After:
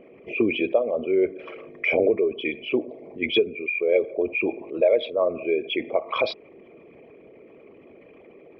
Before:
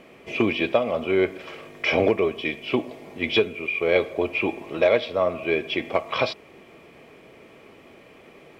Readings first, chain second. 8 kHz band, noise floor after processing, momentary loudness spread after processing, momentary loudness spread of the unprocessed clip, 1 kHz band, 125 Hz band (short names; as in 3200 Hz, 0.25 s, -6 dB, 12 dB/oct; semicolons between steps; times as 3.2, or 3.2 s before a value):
n/a, -50 dBFS, 8 LU, 8 LU, -4.5 dB, -8.5 dB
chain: formant sharpening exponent 2